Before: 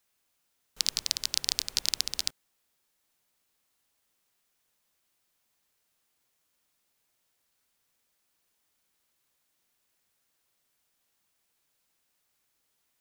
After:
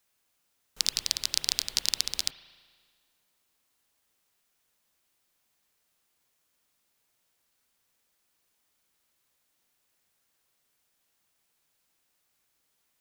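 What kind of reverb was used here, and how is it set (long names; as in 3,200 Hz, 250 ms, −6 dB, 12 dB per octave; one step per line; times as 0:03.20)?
spring reverb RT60 1.7 s, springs 36 ms, chirp 80 ms, DRR 11 dB
level +1 dB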